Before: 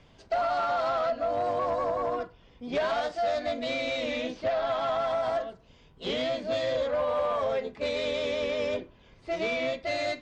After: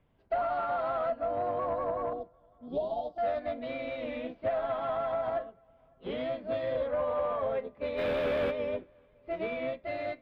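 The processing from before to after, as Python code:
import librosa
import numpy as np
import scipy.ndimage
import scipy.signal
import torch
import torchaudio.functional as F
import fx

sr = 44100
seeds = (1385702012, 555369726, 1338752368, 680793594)

y = fx.cheby1_bandstop(x, sr, low_hz=840.0, high_hz=3500.0, order=3, at=(2.13, 3.18))
y = fx.high_shelf(y, sr, hz=3900.0, db=-7.5, at=(5.45, 6.11))
y = fx.quant_companded(y, sr, bits=2, at=(7.97, 8.5), fade=0.02)
y = fx.air_absorb(y, sr, metres=490.0)
y = fx.echo_filtered(y, sr, ms=553, feedback_pct=50, hz=3400.0, wet_db=-22.5)
y = fx.upward_expand(y, sr, threshold_db=-49.0, expansion=1.5)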